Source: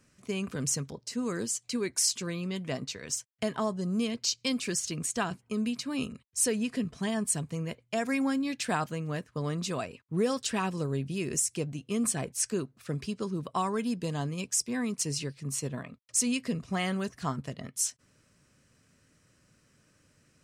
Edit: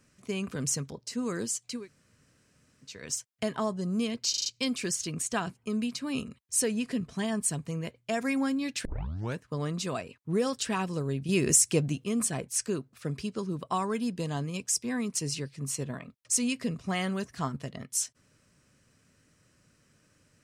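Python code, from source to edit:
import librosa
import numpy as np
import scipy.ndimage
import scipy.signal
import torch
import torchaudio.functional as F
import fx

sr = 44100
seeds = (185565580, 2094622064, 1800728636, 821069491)

y = fx.edit(x, sr, fx.room_tone_fill(start_s=1.77, length_s=1.15, crossfade_s=0.24),
    fx.stutter(start_s=4.3, slice_s=0.04, count=5),
    fx.tape_start(start_s=8.69, length_s=0.53),
    fx.clip_gain(start_s=11.13, length_s=0.75, db=7.0), tone=tone)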